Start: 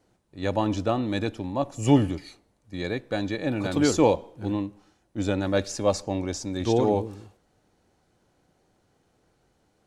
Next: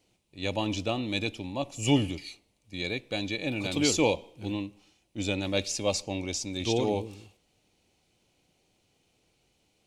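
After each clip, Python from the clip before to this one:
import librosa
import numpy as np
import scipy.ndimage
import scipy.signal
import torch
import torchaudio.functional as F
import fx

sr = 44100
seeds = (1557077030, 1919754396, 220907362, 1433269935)

y = fx.high_shelf_res(x, sr, hz=2000.0, db=7.0, q=3.0)
y = F.gain(torch.from_numpy(y), -5.0).numpy()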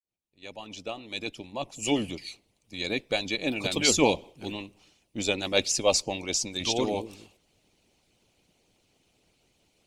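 y = fx.fade_in_head(x, sr, length_s=2.92)
y = fx.hpss(y, sr, part='harmonic', gain_db=-17)
y = F.gain(torch.from_numpy(y), 7.0).numpy()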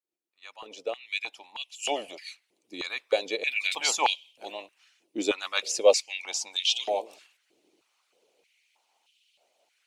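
y = fx.filter_held_highpass(x, sr, hz=3.2, low_hz=340.0, high_hz=3000.0)
y = F.gain(torch.from_numpy(y), -3.5).numpy()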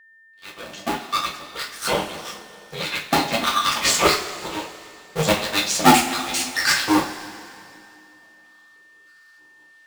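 y = fx.cycle_switch(x, sr, every=2, mode='inverted')
y = fx.rev_double_slope(y, sr, seeds[0], early_s=0.3, late_s=2.7, knee_db=-18, drr_db=-2.5)
y = y + 10.0 ** (-53.0 / 20.0) * np.sin(2.0 * np.pi * 1800.0 * np.arange(len(y)) / sr)
y = F.gain(torch.from_numpy(y), 3.5).numpy()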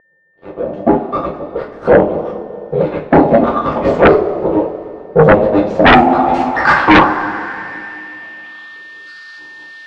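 y = fx.filter_sweep_lowpass(x, sr, from_hz=530.0, to_hz=4100.0, start_s=5.67, end_s=9.1, q=1.9)
y = fx.fold_sine(y, sr, drive_db=6, ceiling_db=-7.5)
y = F.gain(torch.from_numpy(y), 6.0).numpy()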